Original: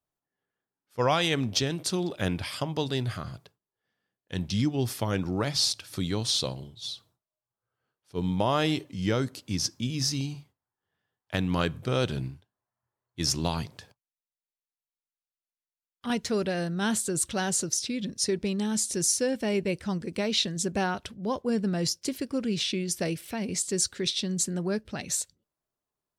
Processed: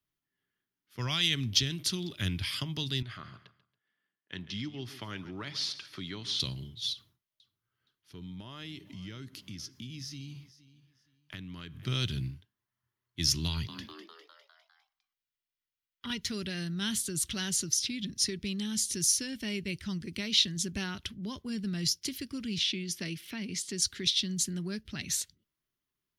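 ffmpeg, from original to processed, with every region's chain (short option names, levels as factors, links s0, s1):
-filter_complex "[0:a]asettb=1/sr,asplit=3[s0][s1][s2];[s0]atrim=end=3.024[s3];[s1]atrim=start=3.02:end=6.4,asetpts=PTS-STARTPTS,afade=t=in:d=0.004:c=qsin,afade=t=out:st=3.376:d=0.004:c=qsin,bandpass=f=940:t=q:w=0.59,aecho=1:1:139|278|417:0.158|0.0444|0.0124,atrim=end_sample=149058[s4];[s2]atrim=start=6.396[s5];[s3][s4]acrossfade=d=0.004:c1=hsin:c2=qsin[s6];[s6][s5]acrossfade=d=0.004:c1=qsin:c2=hsin,asettb=1/sr,asplit=3[s7][s8][s9];[s7]atrim=end=6.934[s10];[s8]atrim=start=6.93:end=11.86,asetpts=PTS-STARTPTS,afade=t=in:d=0.004:c=qsin,afade=t=out:st=4.926:d=0.004:c=qsin,acompressor=threshold=0.00562:ratio=3:attack=3.2:release=140:knee=1:detection=peak,aecho=1:1:469|938:0.119|0.0309,atrim=end_sample=217413[s11];[s9]atrim=start=11.856[s12];[s10][s11]acrossfade=d=0.004:c1=hsin:c2=qsin[s13];[s13][s12]acrossfade=d=0.004:c1=qsin:c2=hsin,asettb=1/sr,asplit=3[s14][s15][s16];[s14]atrim=end=13.484[s17];[s15]atrim=start=13.48:end=16.22,asetpts=PTS-STARTPTS,afade=t=in:d=0.004:c=qsin,afade=t=out:st=2.736:d=0.004:c=qsin,equalizer=f=9800:w=0.99:g=-8,aecho=1:1:2.1:0.32,atrim=end_sample=120834,asplit=7[s18][s19][s20][s21][s22][s23][s24];[s19]adelay=202,afreqshift=110,volume=0.251[s25];[s20]adelay=404,afreqshift=220,volume=0.143[s26];[s21]adelay=606,afreqshift=330,volume=0.0813[s27];[s22]adelay=808,afreqshift=440,volume=0.0468[s28];[s23]adelay=1010,afreqshift=550,volume=0.0266[s29];[s24]adelay=1212,afreqshift=660,volume=0.0151[s30];[s18][s25][s26][s27][s28][s29][s30]amix=inputs=7:normalize=0,atrim=end_sample=120834[s31];[s16]atrim=start=16.216[s32];[s17][s31]acrossfade=d=0.004:c1=hsin:c2=qsin[s33];[s33][s32]acrossfade=d=0.004:c1=qsin:c2=hsin,asettb=1/sr,asplit=3[s34][s35][s36];[s34]atrim=end=22.584[s37];[s35]atrim=start=22.58:end=23.82,asetpts=PTS-STARTPTS,afade=t=in:d=0.004:c=qsin,afade=t=out:st=1.236:d=0.004:c=qsin,highpass=150,highshelf=f=7000:g=-8.5[s38];[s36]atrim=start=23.816[s39];[s37][s38]acrossfade=d=0.004:c1=hsin:c2=qsin[s40];[s40][s39]acrossfade=d=0.004:c1=qsin:c2=hsin,equalizer=f=750:w=1.7:g=-12,acrossover=split=130|3000[s41][s42][s43];[s42]acompressor=threshold=0.00562:ratio=2[s44];[s41][s44][s43]amix=inputs=3:normalize=0,equalizer=f=500:t=o:w=0.33:g=-11,equalizer=f=2000:t=o:w=0.33:g=4,equalizer=f=3150:t=o:w=0.33:g=5,equalizer=f=8000:t=o:w=0.33:g=-10,volume=1.26"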